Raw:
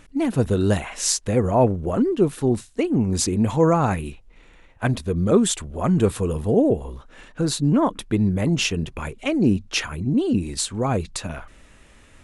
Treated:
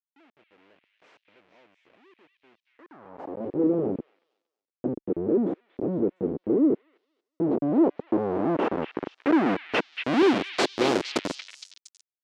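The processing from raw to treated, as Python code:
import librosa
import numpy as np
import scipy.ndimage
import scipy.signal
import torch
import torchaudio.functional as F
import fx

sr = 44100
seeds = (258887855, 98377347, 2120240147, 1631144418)

y = fx.schmitt(x, sr, flips_db=-21.0)
y = fx.filter_sweep_lowpass(y, sr, from_hz=350.0, to_hz=6500.0, start_s=7.13, end_s=11.09, q=1.0)
y = fx.echo_stepped(y, sr, ms=232, hz=2800.0, octaves=0.7, feedback_pct=70, wet_db=-3.5)
y = fx.filter_sweep_highpass(y, sr, from_hz=2600.0, to_hz=330.0, start_s=2.64, end_s=3.64, q=1.9)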